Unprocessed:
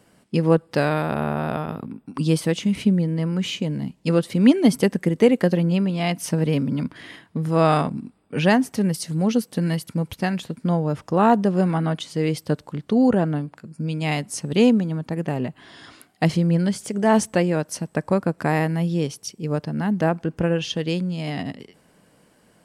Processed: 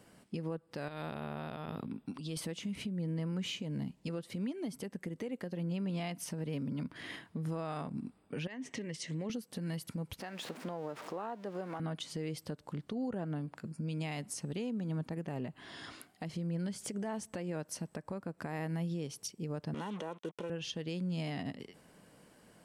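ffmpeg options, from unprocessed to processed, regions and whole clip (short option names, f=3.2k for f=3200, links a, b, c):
-filter_complex "[0:a]asettb=1/sr,asplit=3[a][b][c];[a]atrim=end=0.884[d];[b]atrim=start=0.88:end=2.37,asetpts=PTS-STARTPTS,afade=t=in:d=0.004:c=qsin,afade=t=out:st=1.486:d=0.004:c=qsin,equalizer=f=3.6k:t=o:w=0.86:g=8.5,acompressor=threshold=-26dB:ratio=12:attack=3.2:release=140:knee=1:detection=peak[e];[c]atrim=start=2.366[f];[d][e]acrossfade=d=0.004:c1=hsin:c2=qsin[g];[g][f]acrossfade=d=0.004:c1=qsin:c2=hsin,asettb=1/sr,asplit=3[h][i][j];[h]atrim=end=8.474[k];[i]atrim=start=8.47:end=9.3,asetpts=PTS-STARTPTS,afade=t=in:d=0.004:c=qsin,afade=t=out:st=0.826:d=0.004:c=qsin,acompressor=threshold=-24dB:ratio=16:attack=3.2:release=140:knee=1:detection=peak,highpass=130,equalizer=f=190:t=q:w=4:g=-9,equalizer=f=770:t=q:w=4:g=-9,equalizer=f=1.4k:t=q:w=4:g=-9,equalizer=f=2k:t=q:w=4:g=10,equalizer=f=3k:t=q:w=4:g=5,equalizer=f=4.7k:t=q:w=4:g=-7,lowpass=f=6.9k:w=0.5412,lowpass=f=6.9k:w=1.3066[l];[j]atrim=start=9.296[m];[k][l]acrossfade=d=0.004:c1=hsin:c2=qsin[n];[n][m]acrossfade=d=0.004:c1=qsin:c2=hsin,asettb=1/sr,asplit=3[o][p][q];[o]atrim=end=10.204[r];[p]atrim=start=10.2:end=11.8,asetpts=PTS-STARTPTS,afade=t=in:d=0.004:c=qsin,afade=t=out:st=1.596:d=0.004:c=qsin,aeval=exprs='val(0)+0.5*0.0237*sgn(val(0))':c=same,highpass=360,aemphasis=mode=reproduction:type=cd[s];[q]atrim=start=11.796[t];[r][s]acrossfade=d=0.004:c1=hsin:c2=qsin[u];[u][t]acrossfade=d=0.004:c1=qsin:c2=hsin,asettb=1/sr,asplit=3[v][w][x];[v]atrim=end=19.744[y];[w]atrim=start=19.74:end=20.5,asetpts=PTS-STARTPTS,afade=t=in:d=0.004:c=qsin,afade=t=out:st=0.756:d=0.004:c=qsin,aecho=1:1:2.1:0.65,atrim=end_sample=33516,acrusher=bits=5:mix=0:aa=0.5,highpass=f=190:w=0.5412,highpass=f=190:w=1.3066,equalizer=f=1.1k:t=q:w=4:g=6,equalizer=f=1.6k:t=q:w=4:g=-6,equalizer=f=3.3k:t=q:w=4:g=7,equalizer=f=4.8k:t=q:w=4:g=-10,equalizer=f=7.4k:t=q:w=4:g=-4,lowpass=f=9.7k:w=0.5412,lowpass=f=9.7k:w=1.3066[z];[x]atrim=start=20.496[aa];[y][z]acrossfade=d=0.004:c1=hsin:c2=qsin[ab];[ab][aa]acrossfade=d=0.004:c1=qsin:c2=hsin,acompressor=threshold=-26dB:ratio=5,alimiter=level_in=2.5dB:limit=-24dB:level=0:latency=1:release=276,volume=-2.5dB,volume=-3.5dB"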